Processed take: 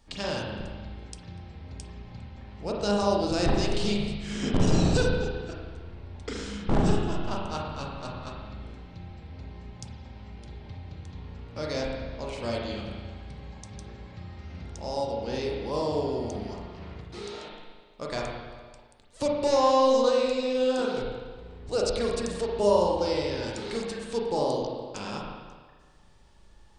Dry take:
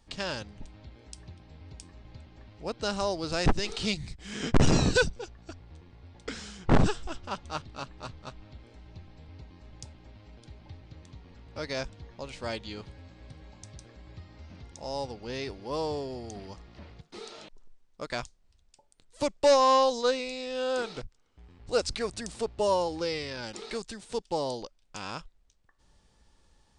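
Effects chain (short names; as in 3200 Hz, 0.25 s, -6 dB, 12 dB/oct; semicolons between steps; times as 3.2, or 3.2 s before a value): dynamic EQ 1800 Hz, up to -7 dB, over -46 dBFS, Q 0.85; limiter -20 dBFS, peak gain reduction 6 dB; spring tank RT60 1.5 s, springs 34/39 ms, chirp 25 ms, DRR -2.5 dB; gain +1.5 dB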